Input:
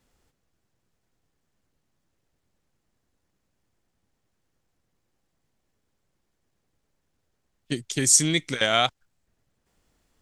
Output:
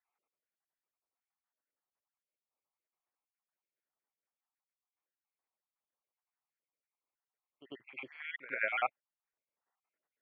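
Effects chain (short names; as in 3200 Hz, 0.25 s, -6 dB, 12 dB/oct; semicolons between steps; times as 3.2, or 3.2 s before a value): random spectral dropouts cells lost 57%; HPF 910 Hz 12 dB/oct; gate -45 dBFS, range -7 dB; steep low-pass 2400 Hz 48 dB/oct; bell 1700 Hz -6.5 dB 0.77 oct; on a send: reverse echo 97 ms -10.5 dB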